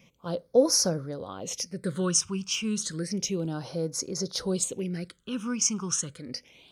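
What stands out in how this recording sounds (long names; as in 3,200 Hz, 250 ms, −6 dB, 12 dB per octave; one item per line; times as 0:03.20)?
phaser sweep stages 8, 0.31 Hz, lowest notch 540–2,900 Hz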